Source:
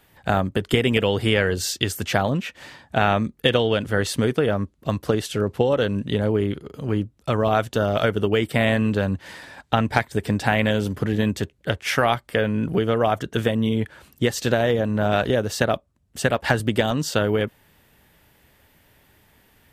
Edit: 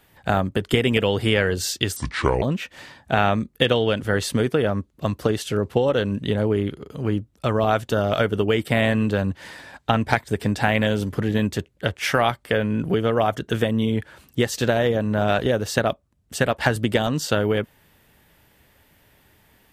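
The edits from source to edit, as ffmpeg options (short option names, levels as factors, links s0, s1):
-filter_complex "[0:a]asplit=3[s0][s1][s2];[s0]atrim=end=1.964[s3];[s1]atrim=start=1.96:end=2.26,asetpts=PTS-STARTPTS,asetrate=28665,aresample=44100[s4];[s2]atrim=start=2.256[s5];[s3][s4]acrossfade=d=0.004:c1=hsin:c2=hsin[s6];[s6][s5]acrossfade=d=0.004:c1=hsin:c2=hsin"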